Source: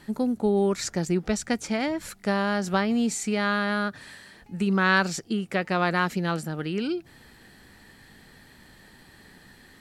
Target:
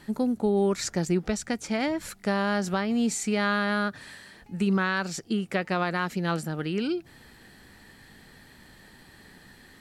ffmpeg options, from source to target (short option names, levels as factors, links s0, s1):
-af "alimiter=limit=0.168:level=0:latency=1:release=320"